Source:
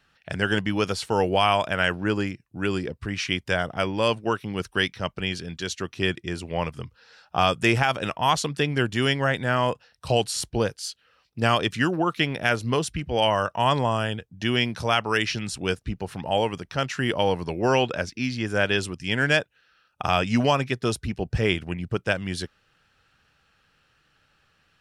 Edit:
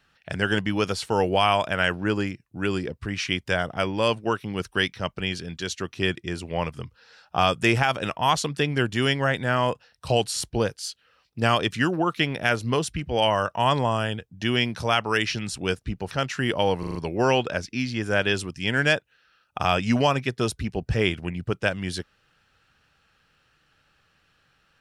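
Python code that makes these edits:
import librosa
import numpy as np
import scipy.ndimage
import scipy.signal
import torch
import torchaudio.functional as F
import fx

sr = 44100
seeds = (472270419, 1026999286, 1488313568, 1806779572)

y = fx.edit(x, sr, fx.cut(start_s=16.11, length_s=0.6),
    fx.stutter(start_s=17.39, slice_s=0.04, count=5), tone=tone)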